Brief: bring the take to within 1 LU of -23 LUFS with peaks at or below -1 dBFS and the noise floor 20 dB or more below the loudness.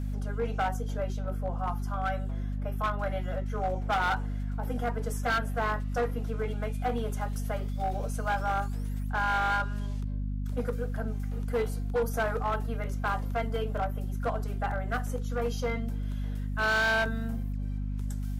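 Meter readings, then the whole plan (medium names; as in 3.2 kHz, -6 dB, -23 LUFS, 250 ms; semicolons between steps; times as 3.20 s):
clipped samples 2.4%; clipping level -23.0 dBFS; hum 50 Hz; highest harmonic 250 Hz; hum level -30 dBFS; loudness -31.5 LUFS; peak level -23.0 dBFS; loudness target -23.0 LUFS
-> clip repair -23 dBFS; de-hum 50 Hz, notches 5; trim +8.5 dB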